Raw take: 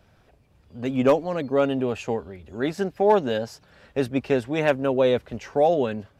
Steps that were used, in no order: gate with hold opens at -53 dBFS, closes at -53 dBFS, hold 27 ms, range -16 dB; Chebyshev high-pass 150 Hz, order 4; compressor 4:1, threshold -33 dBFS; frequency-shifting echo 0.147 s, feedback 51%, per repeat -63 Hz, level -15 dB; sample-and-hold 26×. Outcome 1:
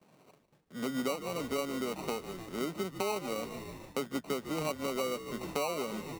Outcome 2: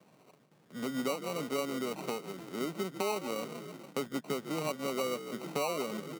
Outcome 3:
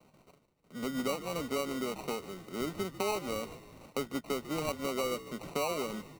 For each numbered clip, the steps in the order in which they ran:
sample-and-hold > Chebyshev high-pass > gate with hold > frequency-shifting echo > compressor; gate with hold > frequency-shifting echo > sample-and-hold > compressor > Chebyshev high-pass; compressor > Chebyshev high-pass > gate with hold > sample-and-hold > frequency-shifting echo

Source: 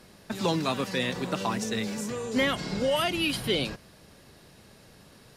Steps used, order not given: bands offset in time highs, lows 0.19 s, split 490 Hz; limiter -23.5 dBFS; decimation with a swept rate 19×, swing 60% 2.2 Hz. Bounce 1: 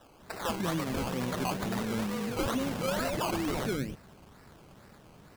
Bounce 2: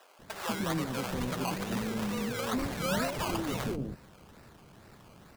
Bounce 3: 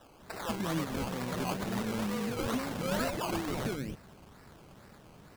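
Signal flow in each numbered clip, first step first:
bands offset in time > decimation with a swept rate > limiter; decimation with a swept rate > limiter > bands offset in time; limiter > bands offset in time > decimation with a swept rate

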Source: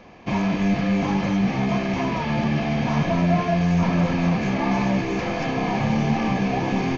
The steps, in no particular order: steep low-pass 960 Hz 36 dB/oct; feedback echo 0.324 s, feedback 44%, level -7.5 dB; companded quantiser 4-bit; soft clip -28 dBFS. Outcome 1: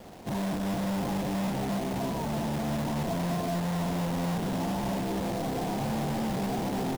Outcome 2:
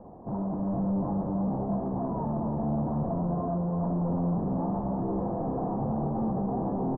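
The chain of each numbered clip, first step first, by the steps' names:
feedback echo > soft clip > steep low-pass > companded quantiser; soft clip > feedback echo > companded quantiser > steep low-pass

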